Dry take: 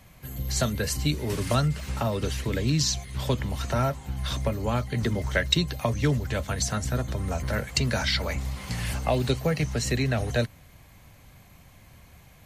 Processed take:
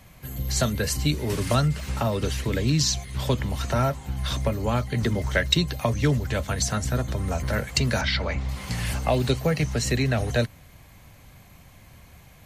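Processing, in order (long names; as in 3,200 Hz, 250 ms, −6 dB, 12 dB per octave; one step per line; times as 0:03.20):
0:08.01–0:08.49: low-pass filter 4,000 Hz 12 dB per octave
in parallel at −10.5 dB: soft clipping −15 dBFS, distortion −21 dB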